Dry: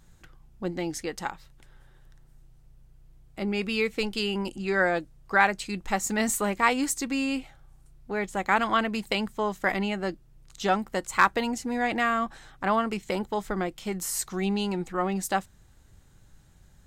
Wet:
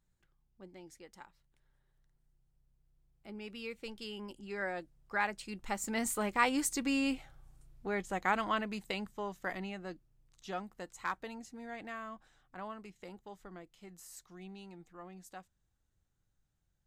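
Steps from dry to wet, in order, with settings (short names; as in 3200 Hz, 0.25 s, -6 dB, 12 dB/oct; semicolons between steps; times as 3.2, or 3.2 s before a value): Doppler pass-by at 7.2, 13 m/s, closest 11 m; gain -3.5 dB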